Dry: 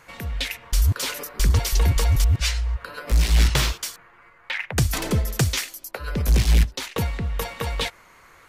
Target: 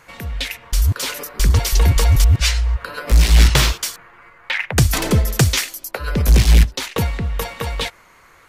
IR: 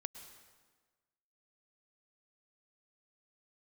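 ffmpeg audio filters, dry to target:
-af "dynaudnorm=framelen=370:gausssize=9:maxgain=4dB,volume=2.5dB"

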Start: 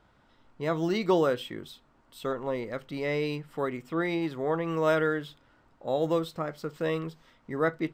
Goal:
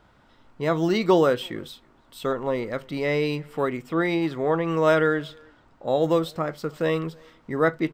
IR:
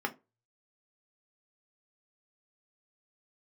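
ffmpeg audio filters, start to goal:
-filter_complex "[0:a]asettb=1/sr,asplit=3[link_01][link_02][link_03];[link_01]atrim=end=4.304[link_04];[link_02]atrim=start=4.3:end=6.04,asetpts=PTS-STARTPTS,afade=type=in:duration=0.004:curve=qsin,afade=type=out:start_time=1.736:duration=0.004:curve=qsin,equalizer=frequency=12000:width=2.6:gain=-13[link_05];[link_03]atrim=start=6.036[link_06];[link_04][link_05]acrossfade=duration=0.004:curve1=hsin:curve2=qsin[link_07];[link_07][link_06]acrossfade=duration=0.004:curve1=qsin:curve2=hsin,asplit=2[link_08][link_09];[link_09]adelay=320,highpass=300,lowpass=3400,asoftclip=type=hard:threshold=-22.5dB,volume=-27dB[link_10];[link_08][link_10]amix=inputs=2:normalize=0,volume=5.5dB"

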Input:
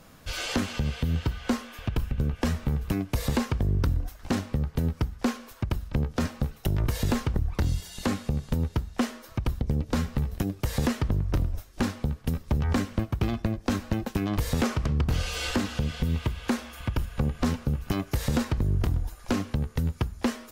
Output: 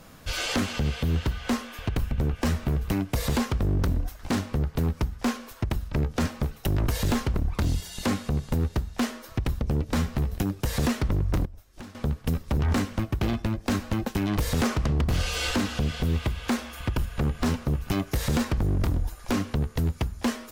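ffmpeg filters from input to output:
ffmpeg -i in.wav -filter_complex "[0:a]aeval=exprs='0.0841*(abs(mod(val(0)/0.0841+3,4)-2)-1)':channel_layout=same,asettb=1/sr,asplit=3[link_01][link_02][link_03];[link_01]atrim=end=11.454[link_04];[link_02]atrim=start=11.45:end=11.95,asetpts=PTS-STARTPTS,afade=type=in:duration=0.004:curve=qsin,afade=type=out:start_time=0.496:duration=0.004:curve=qsin,acompressor=threshold=-44dB:ratio=6[link_05];[link_03]atrim=start=11.946[link_06];[link_04][link_05]acrossfade=duration=0.004:curve1=hsin:curve2=qsin[link_07];[link_07][link_06]acrossfade=duration=0.004:curve1=qsin:curve2=hsin,volume=3dB" out.wav

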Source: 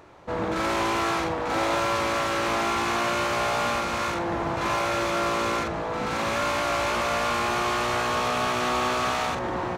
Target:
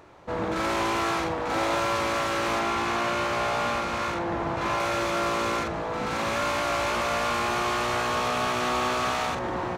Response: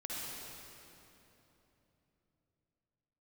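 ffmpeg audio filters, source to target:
-filter_complex "[0:a]asettb=1/sr,asplit=3[link_01][link_02][link_03];[link_01]atrim=end=2.594[link_04];[link_02]atrim=start=2.59:end=4.8,asetpts=PTS-STARTPTS,afade=type=in:duration=0.004:curve=qsin,afade=type=out:start_time=2.206:duration=0.004:curve=qsin,highshelf=frequency=6000:gain=-6.5[link_05];[link_03]atrim=start=4.796[link_06];[link_04][link_05]acrossfade=duration=0.004:curve1=hsin:curve2=qsin[link_07];[link_07][link_06]acrossfade=duration=0.004:curve1=qsin:curve2=hsin,volume=-1dB"

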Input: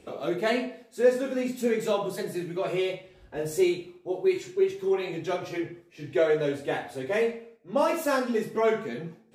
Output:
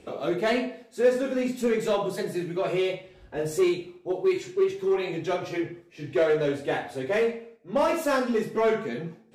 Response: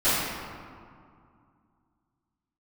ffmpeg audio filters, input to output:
-filter_complex "[0:a]highshelf=frequency=11000:gain=-8,asplit=2[link_01][link_02];[link_02]aeval=exprs='0.0668*(abs(mod(val(0)/0.0668+3,4)-2)-1)':channel_layout=same,volume=-10dB[link_03];[link_01][link_03]amix=inputs=2:normalize=0"

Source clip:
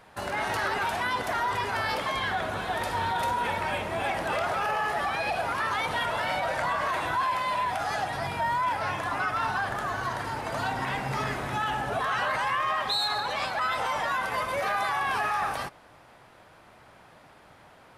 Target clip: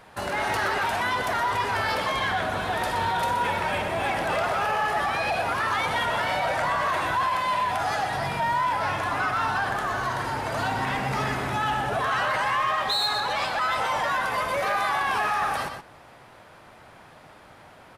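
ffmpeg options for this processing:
ffmpeg -i in.wav -filter_complex "[0:a]asplit=2[link_01][link_02];[link_02]adelay=122.4,volume=-7dB,highshelf=frequency=4000:gain=-2.76[link_03];[link_01][link_03]amix=inputs=2:normalize=0,asplit=2[link_04][link_05];[link_05]asoftclip=type=hard:threshold=-29.5dB,volume=-6dB[link_06];[link_04][link_06]amix=inputs=2:normalize=0" out.wav

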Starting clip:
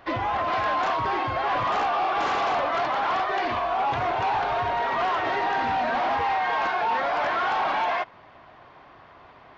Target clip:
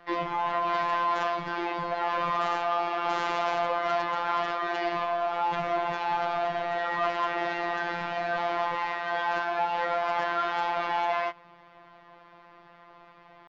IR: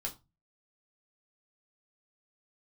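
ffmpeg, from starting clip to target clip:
-af "afftfilt=real='hypot(re,im)*cos(PI*b)':imag='0':win_size=1024:overlap=0.75,atempo=0.71"

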